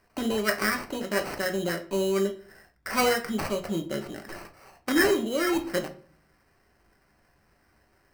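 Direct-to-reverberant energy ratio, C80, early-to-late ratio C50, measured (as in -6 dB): 4.0 dB, 17.5 dB, 13.5 dB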